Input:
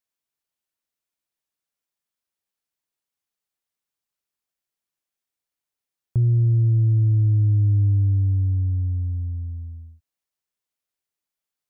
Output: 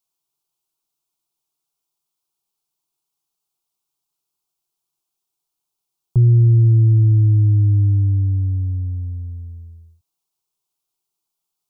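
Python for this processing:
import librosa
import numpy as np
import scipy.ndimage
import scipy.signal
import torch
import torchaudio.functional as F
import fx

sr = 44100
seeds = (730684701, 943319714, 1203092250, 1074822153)

y = fx.fixed_phaser(x, sr, hz=360.0, stages=8)
y = F.gain(torch.from_numpy(y), 8.0).numpy()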